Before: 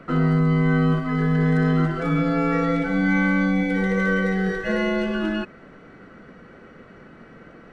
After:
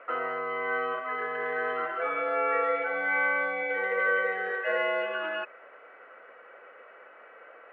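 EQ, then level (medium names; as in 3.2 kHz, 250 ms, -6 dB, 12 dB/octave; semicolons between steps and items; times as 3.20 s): Chebyshev band-pass 520–2700 Hz, order 3; distance through air 55 m; 0.0 dB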